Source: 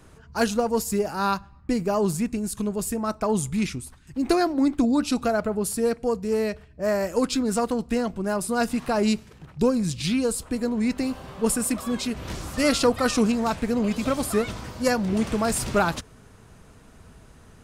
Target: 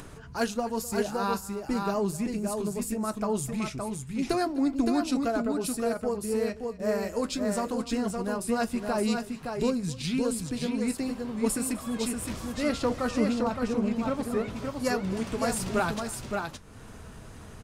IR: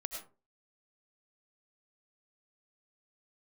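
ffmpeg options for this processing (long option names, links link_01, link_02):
-filter_complex "[0:a]asettb=1/sr,asplit=3[link_01][link_02][link_03];[link_01]atrim=end=12.524[link_04];[link_02]atrim=start=12.52:end=14.56,asetpts=PTS-STARTPTS,afade=type=in:duration=0.004:curve=qsin,afade=type=out:start_time=2.036:duration=0.004:curve=qsin,highshelf=frequency=3000:gain=-10[link_05];[link_03]atrim=start=14.556[link_06];[link_04][link_05]acrossfade=duration=0.004:curve1=hsin:curve2=qsin[link_07];[link_07][link_06]acrossfade=duration=0.004:curve1=qsin:curve2=hsin,aecho=1:1:254|567:0.106|0.596,flanger=delay=7:depth=2.5:regen=-61:speed=0.2:shape=sinusoidal,acompressor=mode=upward:threshold=-33dB:ratio=2.5,volume=-1.5dB"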